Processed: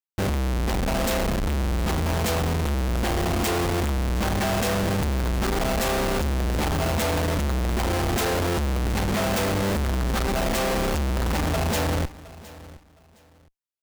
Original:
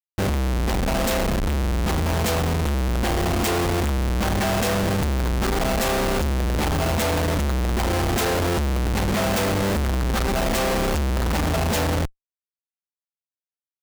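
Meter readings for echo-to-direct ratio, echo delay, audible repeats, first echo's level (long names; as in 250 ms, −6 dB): −19.0 dB, 714 ms, 2, −19.0 dB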